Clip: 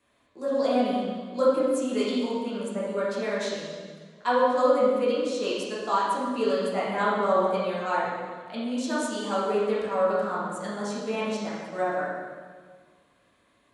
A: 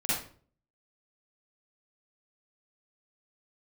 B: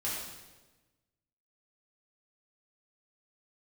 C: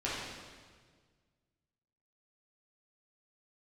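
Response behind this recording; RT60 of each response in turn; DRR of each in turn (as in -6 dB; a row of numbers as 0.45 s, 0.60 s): C; 0.45 s, 1.2 s, 1.6 s; -10.5 dB, -8.5 dB, -9.0 dB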